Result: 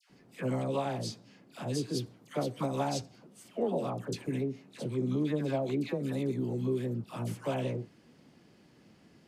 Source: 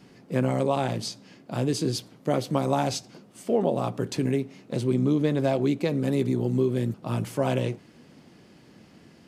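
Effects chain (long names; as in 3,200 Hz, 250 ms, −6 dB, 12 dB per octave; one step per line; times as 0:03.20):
all-pass dispersion lows, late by 100 ms, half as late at 1,200 Hz
level −7.5 dB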